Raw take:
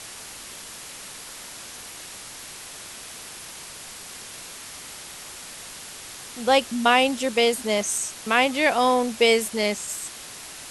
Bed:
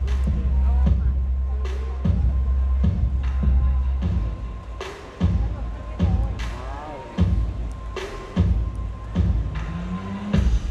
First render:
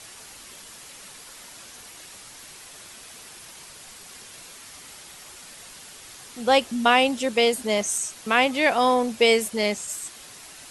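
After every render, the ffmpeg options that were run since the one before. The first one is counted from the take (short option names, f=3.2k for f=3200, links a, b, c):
-af "afftdn=nr=6:nf=-40"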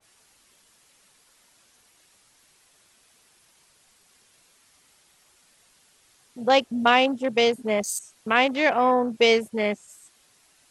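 -af "afwtdn=0.0282,adynamicequalizer=threshold=0.02:dfrequency=2200:dqfactor=0.7:tfrequency=2200:tqfactor=0.7:attack=5:release=100:ratio=0.375:range=2.5:mode=cutabove:tftype=highshelf"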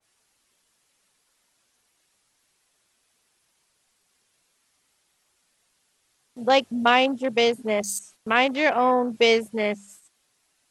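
-af "bandreject=f=50:t=h:w=6,bandreject=f=100:t=h:w=6,bandreject=f=150:t=h:w=6,bandreject=f=200:t=h:w=6,agate=range=-9dB:threshold=-49dB:ratio=16:detection=peak"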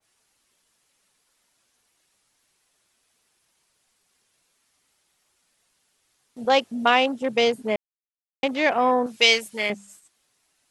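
-filter_complex "[0:a]asettb=1/sr,asplit=3[a][b][c];[a]atrim=end=6.454[d];[b]atrim=start=6.45:end=7.22,asetpts=PTS-STARTPTS,afade=t=in:d=0.004:c=qsin,afade=t=out:st=0.766:d=0.004:c=qsin,highpass=f=200:p=1[e];[c]atrim=start=7.216[f];[d][e]acrossfade=d=0.004:c1=hsin:c2=qsin[g];[g][f]acrossfade=d=0.004:c1=qsin:c2=hsin,asettb=1/sr,asplit=3[h][i][j];[h]atrim=end=9.064[k];[i]atrim=start=9.06:end=9.7,asetpts=PTS-STARTPTS,afade=t=in:d=0.004:c=qsin,afade=t=out:st=0.636:d=0.004:c=qsin,tiltshelf=f=1.2k:g=-9[l];[j]atrim=start=9.696[m];[k][l]acrossfade=d=0.004:c1=hsin:c2=qsin[n];[n][m]acrossfade=d=0.004:c1=qsin:c2=hsin,asplit=3[o][p][q];[o]atrim=end=7.76,asetpts=PTS-STARTPTS,afade=t=out:st=7.756:d=0.004:c=hsin[r];[p]atrim=start=7.76:end=8.43,asetpts=PTS-STARTPTS,volume=0[s];[q]atrim=start=8.43,asetpts=PTS-STARTPTS,afade=t=in:d=0.004:c=hsin[t];[r][s][t]concat=n=3:v=0:a=1"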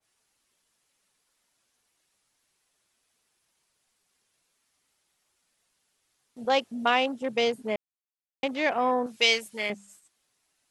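-af "volume=-5dB"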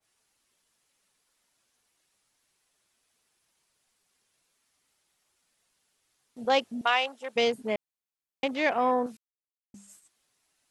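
-filter_complex "[0:a]asettb=1/sr,asplit=3[a][b][c];[a]atrim=end=6.814[d];[b]atrim=start=6.81:end=7.36,asetpts=PTS-STARTPTS,afade=t=in:d=0.004:c=qsin,afade=t=out:st=0.546:d=0.004:c=qsin,highpass=710[e];[c]atrim=start=7.356[f];[d][e]acrossfade=d=0.004:c1=hsin:c2=qsin[g];[g][f]acrossfade=d=0.004:c1=qsin:c2=hsin,asplit=3[h][i][j];[h]atrim=end=9.17,asetpts=PTS-STARTPTS,afade=t=out:st=9.166:d=0.004:c=hsin[k];[i]atrim=start=9.17:end=9.74,asetpts=PTS-STARTPTS,volume=0[l];[j]atrim=start=9.74,asetpts=PTS-STARTPTS,afade=t=in:d=0.004:c=hsin[m];[k][l][m]concat=n=3:v=0:a=1"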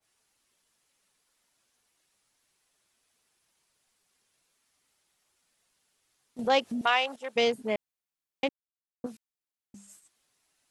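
-filter_complex "[0:a]asettb=1/sr,asplit=3[a][b][c];[a]atrim=end=6.394[d];[b]atrim=start=6.39:end=7.16,asetpts=PTS-STARTPTS,afade=t=in:d=0.004:c=qsin,afade=t=out:st=0.766:d=0.004:c=qsin,acompressor=mode=upward:threshold=-26dB:ratio=2.5:attack=3.2:release=140:knee=2.83:detection=peak[e];[c]atrim=start=7.156[f];[d][e]acrossfade=d=0.004:c1=hsin:c2=qsin[g];[g][f]acrossfade=d=0.004:c1=qsin:c2=hsin,asplit=3[h][i][j];[h]atrim=end=8.49,asetpts=PTS-STARTPTS,afade=t=out:st=8.486:d=0.004:c=hsin[k];[i]atrim=start=8.49:end=9.04,asetpts=PTS-STARTPTS,volume=0[l];[j]atrim=start=9.04,asetpts=PTS-STARTPTS,afade=t=in:d=0.004:c=hsin[m];[k][l][m]concat=n=3:v=0:a=1"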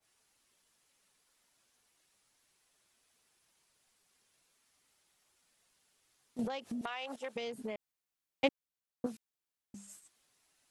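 -filter_complex "[0:a]asettb=1/sr,asplit=3[a][b][c];[a]atrim=end=6.464[d];[b]atrim=start=6.46:end=8.44,asetpts=PTS-STARTPTS,afade=t=in:d=0.004:c=qsin,afade=t=out:st=1.976:d=0.004:c=qsin,acompressor=threshold=-35dB:ratio=20:attack=3.2:release=140:knee=1:detection=peak[e];[c]atrim=start=8.436[f];[d][e]acrossfade=d=0.004:c1=hsin:c2=qsin[g];[g][f]acrossfade=d=0.004:c1=qsin:c2=hsin"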